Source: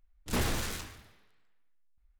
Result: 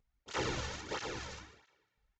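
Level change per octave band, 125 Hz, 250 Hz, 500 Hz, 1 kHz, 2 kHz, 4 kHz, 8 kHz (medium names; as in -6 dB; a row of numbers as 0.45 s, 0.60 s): -6.5 dB, -6.0 dB, 0.0 dB, 0.0 dB, -1.5 dB, -2.0 dB, -6.0 dB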